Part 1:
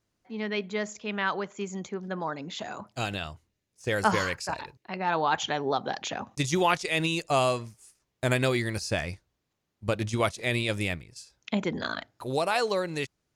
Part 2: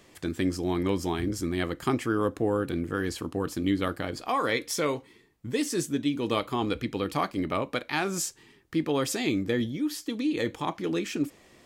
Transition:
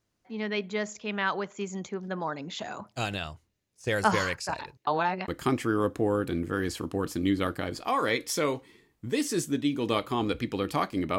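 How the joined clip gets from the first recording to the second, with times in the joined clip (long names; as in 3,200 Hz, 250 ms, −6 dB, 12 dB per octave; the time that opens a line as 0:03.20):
part 1
0:04.87–0:05.28: reverse
0:05.28: continue with part 2 from 0:01.69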